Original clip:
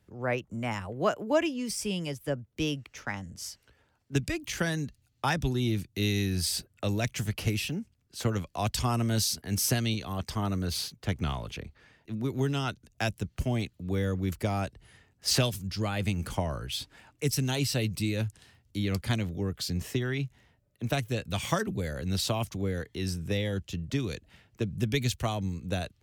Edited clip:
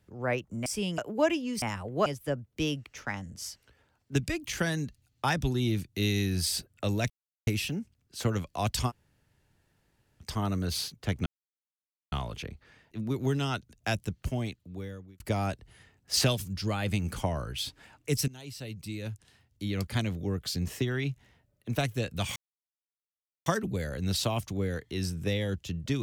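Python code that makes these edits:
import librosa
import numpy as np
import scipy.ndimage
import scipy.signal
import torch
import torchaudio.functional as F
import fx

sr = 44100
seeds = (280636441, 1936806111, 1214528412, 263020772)

y = fx.edit(x, sr, fx.swap(start_s=0.66, length_s=0.44, other_s=1.74, other_length_s=0.32),
    fx.silence(start_s=7.1, length_s=0.37),
    fx.room_tone_fill(start_s=8.89, length_s=1.34, crossfade_s=0.06),
    fx.insert_silence(at_s=11.26, length_s=0.86),
    fx.fade_out_span(start_s=13.2, length_s=1.14),
    fx.fade_in_from(start_s=17.42, length_s=1.95, floor_db=-20.5),
    fx.insert_silence(at_s=21.5, length_s=1.1), tone=tone)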